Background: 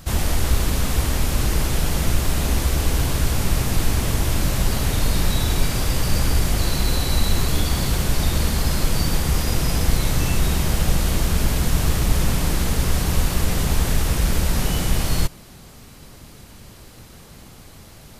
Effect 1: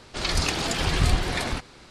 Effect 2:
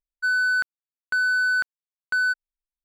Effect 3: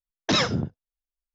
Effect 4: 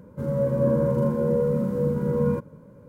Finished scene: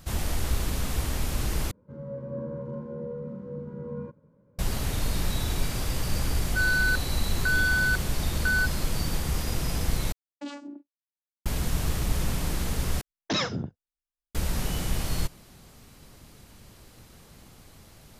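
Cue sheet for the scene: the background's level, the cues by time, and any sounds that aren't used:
background -8 dB
1.71 replace with 4 -13 dB + air absorption 160 m
6.33 add 2 -3.5 dB
10.12 replace with 3 -15 dB + vocoder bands 8, saw 286 Hz
13.01 replace with 3 -5.5 dB
not used: 1

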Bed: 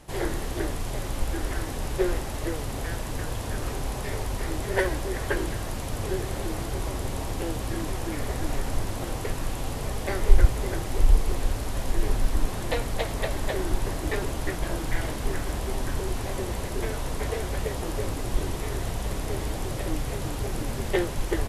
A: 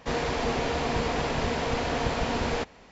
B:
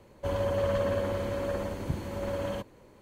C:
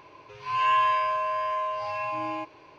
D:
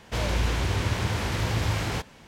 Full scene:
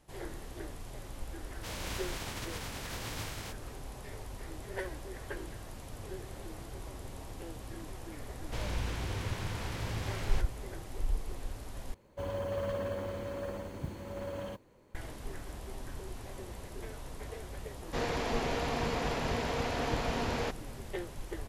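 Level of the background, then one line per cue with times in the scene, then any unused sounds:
bed -14 dB
1.51 add D -15.5 dB + spectral contrast lowered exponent 0.57
8.4 add D -11 dB
11.94 replace with B -7 dB + modulation noise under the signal 31 dB
17.87 add A -5.5 dB
not used: C

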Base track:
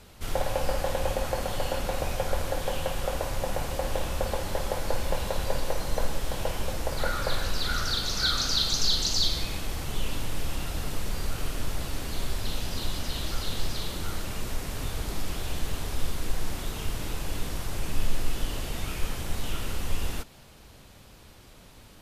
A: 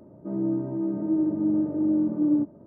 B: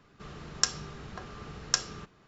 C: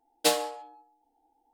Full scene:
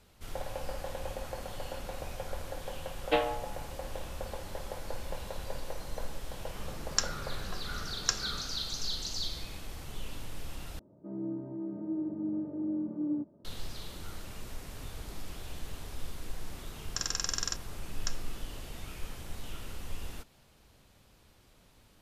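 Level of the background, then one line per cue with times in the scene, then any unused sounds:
base track -10.5 dB
2.87 add C -1.5 dB + steep low-pass 3100 Hz
6.35 add B -3 dB
10.79 replace with A -10.5 dB
16.33 add B -11.5 dB + stuck buffer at 0.63, samples 2048, times 12

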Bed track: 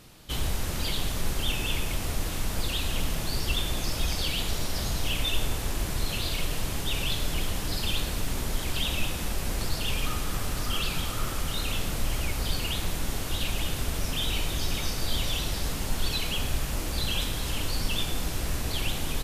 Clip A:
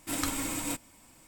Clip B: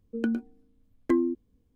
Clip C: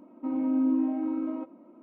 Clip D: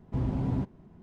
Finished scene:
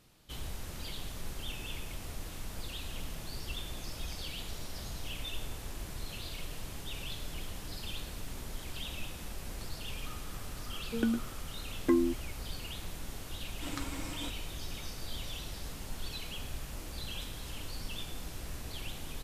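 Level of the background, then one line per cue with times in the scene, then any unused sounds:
bed track -12 dB
10.79 add B -2.5 dB
13.54 add A -7.5 dB + LPF 5500 Hz
not used: C, D

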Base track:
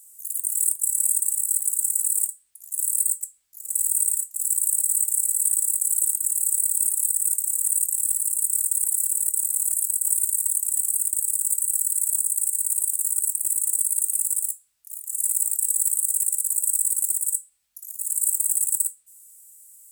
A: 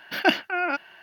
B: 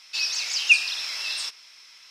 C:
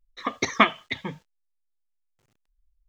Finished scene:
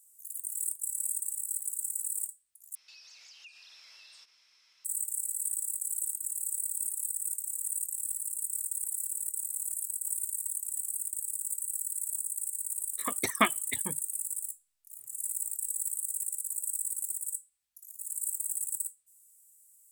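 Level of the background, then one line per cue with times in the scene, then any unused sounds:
base track -11.5 dB
2.75 replace with B -15.5 dB + compressor 5:1, threshold -36 dBFS
12.81 add C -6.5 dB + reverb removal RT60 0.63 s
not used: A

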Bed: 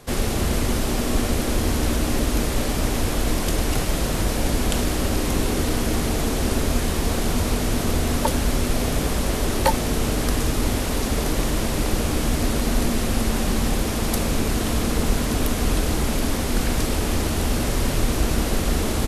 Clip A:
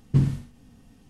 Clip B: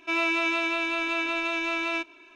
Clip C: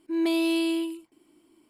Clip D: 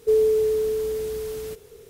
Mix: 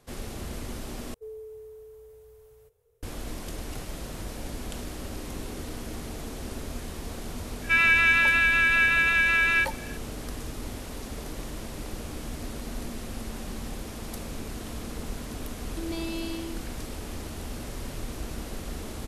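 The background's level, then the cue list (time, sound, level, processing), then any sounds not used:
bed -14.5 dB
1.14 replace with D -16 dB + EQ curve 120 Hz 0 dB, 210 Hz -24 dB, 310 Hz -24 dB, 470 Hz -3 dB, 920 Hz -3 dB, 1500 Hz -8 dB, 4600 Hz -14 dB, 13000 Hz -5 dB
7.62 add B -0.5 dB + resonant high-pass 1700 Hz, resonance Q 8.8
15.66 add C -10.5 dB + resonant high shelf 6800 Hz -10 dB, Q 3
not used: A

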